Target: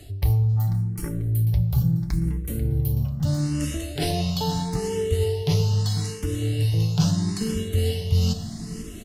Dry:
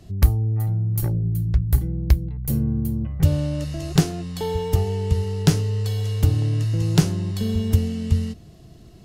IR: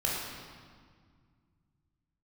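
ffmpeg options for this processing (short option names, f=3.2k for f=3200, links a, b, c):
-filter_complex "[0:a]acrossover=split=4000[a][b];[b]acompressor=threshold=-40dB:ratio=4:attack=1:release=60[c];[a][c]amix=inputs=2:normalize=0,highshelf=f=2.8k:g=10.5,aecho=1:1:6.9:0.35,areverse,acompressor=threshold=-29dB:ratio=6,areverse,aecho=1:1:491|982|1473|1964:0.224|0.0828|0.0306|0.0113,asplit=2[d][e];[1:a]atrim=start_sample=2205,asetrate=70560,aresample=44100[f];[e][f]afir=irnorm=-1:irlink=0,volume=-13dB[g];[d][g]amix=inputs=2:normalize=0,aresample=32000,aresample=44100,asplit=2[h][i];[i]afreqshift=0.77[j];[h][j]amix=inputs=2:normalize=1,volume=9dB"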